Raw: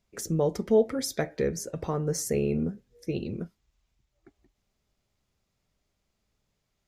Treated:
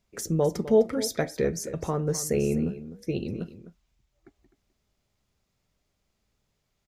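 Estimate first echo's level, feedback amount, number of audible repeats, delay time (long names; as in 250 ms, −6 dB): −14.0 dB, repeats not evenly spaced, 1, 255 ms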